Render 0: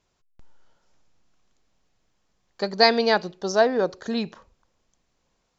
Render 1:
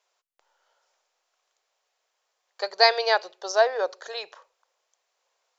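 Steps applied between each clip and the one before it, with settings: inverse Chebyshev high-pass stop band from 250 Hz, stop band 40 dB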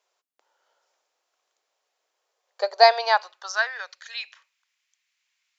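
high-pass sweep 250 Hz -> 2.2 kHz, 1.91–3.98 s; trim -1.5 dB

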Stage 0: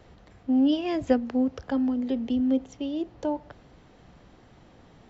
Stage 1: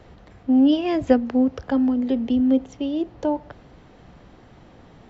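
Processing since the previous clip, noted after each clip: treble shelf 4.6 kHz -6 dB; trim +5.5 dB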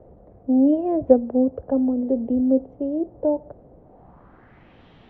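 low-pass sweep 580 Hz -> 3.2 kHz, 3.81–4.83 s; trim -3 dB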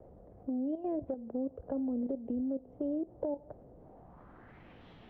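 compression 6:1, threshold -29 dBFS, peak gain reduction 19.5 dB; vibrato 2.9 Hz 55 cents; level held to a coarse grid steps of 11 dB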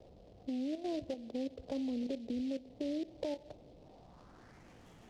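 on a send at -19.5 dB: reverberation RT60 1.9 s, pre-delay 4 ms; on the sum: delay time shaken by noise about 3.3 kHz, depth 0.04 ms; trim -3 dB

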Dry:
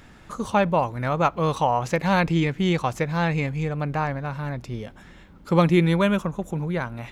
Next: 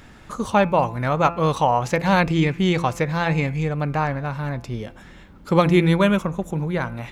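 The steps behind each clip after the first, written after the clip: de-hum 170.5 Hz, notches 16; trim +3 dB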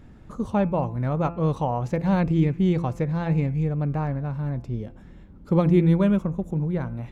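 tilt shelf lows +8.5 dB, about 670 Hz; trim -7.5 dB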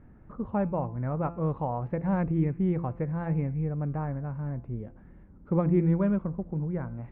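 low-pass 2 kHz 24 dB/octave; trim -5.5 dB

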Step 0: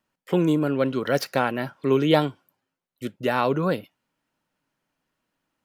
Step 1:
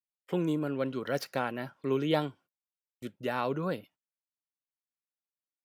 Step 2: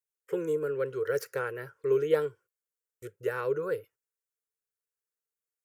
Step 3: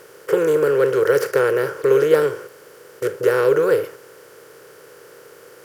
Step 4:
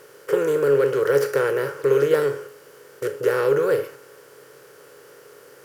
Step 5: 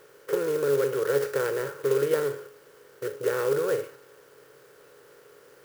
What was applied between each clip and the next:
gate -47 dBFS, range -26 dB; trim -9 dB
FFT filter 120 Hz 0 dB, 240 Hz -24 dB, 450 Hz +12 dB, 690 Hz -15 dB, 1.5 kHz +3 dB, 3.7 kHz -13 dB, 6.9 kHz +3 dB
spectral levelling over time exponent 0.4; trim +8 dB
feedback comb 140 Hz, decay 0.41 s, harmonics all, mix 70%; trim +5 dB
sampling jitter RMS 0.036 ms; trim -6 dB

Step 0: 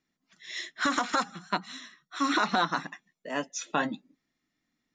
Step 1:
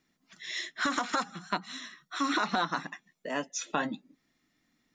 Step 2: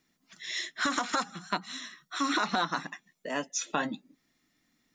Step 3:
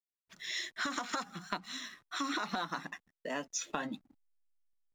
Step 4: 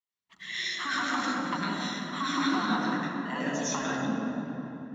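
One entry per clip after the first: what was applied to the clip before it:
compression 1.5:1, threshold -49 dBFS, peak gain reduction 10 dB; trim +6.5 dB
treble shelf 5.3 kHz +5.5 dB
compression 3:1, threshold -32 dBFS, peak gain reduction 7 dB; hysteresis with a dead band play -53.5 dBFS; trim -1.5 dB
reverberation RT60 3.5 s, pre-delay 75 ms, DRR -5.5 dB; trim -8 dB

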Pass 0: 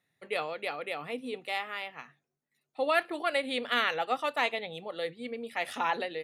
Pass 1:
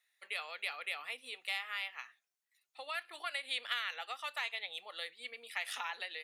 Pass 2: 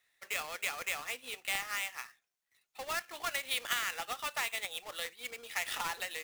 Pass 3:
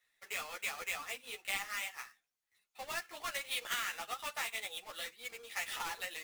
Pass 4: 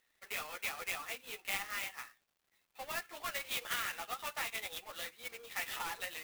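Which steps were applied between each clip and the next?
compression 12:1, threshold -32 dBFS, peak gain reduction 12.5 dB; Bessel high-pass 1.9 kHz, order 2; trim +3.5 dB
square wave that keeps the level
three-phase chorus
crackle 440 per s -64 dBFS; sampling jitter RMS 0.031 ms

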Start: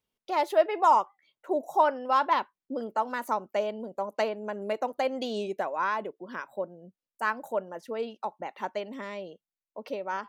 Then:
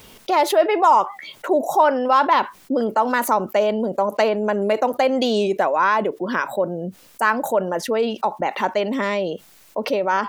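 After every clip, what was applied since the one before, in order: level flattener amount 50%; trim +5 dB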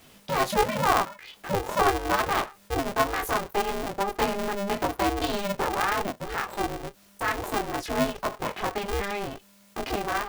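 chorus voices 4, 0.47 Hz, delay 21 ms, depth 2.1 ms; polarity switched at an audio rate 200 Hz; trim -5 dB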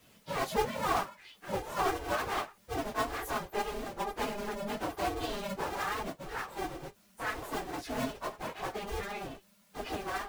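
phase randomisation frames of 50 ms; trim -8 dB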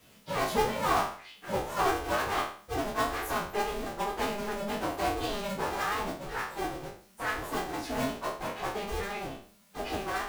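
spectral sustain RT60 0.47 s; trim +1.5 dB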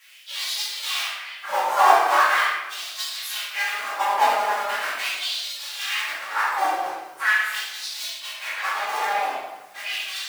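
LFO high-pass sine 0.41 Hz 800–4100 Hz; simulated room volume 650 m³, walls mixed, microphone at 2.3 m; trim +4 dB

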